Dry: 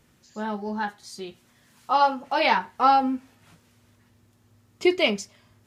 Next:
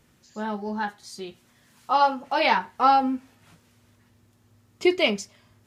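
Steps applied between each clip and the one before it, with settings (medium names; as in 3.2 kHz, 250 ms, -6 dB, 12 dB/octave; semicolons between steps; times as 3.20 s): no audible change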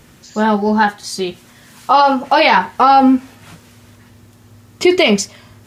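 loudness maximiser +17 dB; trim -1 dB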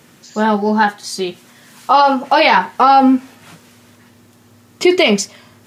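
high-pass 150 Hz 12 dB/octave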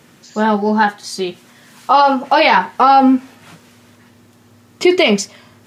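treble shelf 6.6 kHz -4 dB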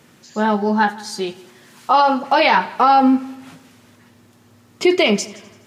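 multi-head delay 84 ms, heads first and second, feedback 44%, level -23 dB; trim -3 dB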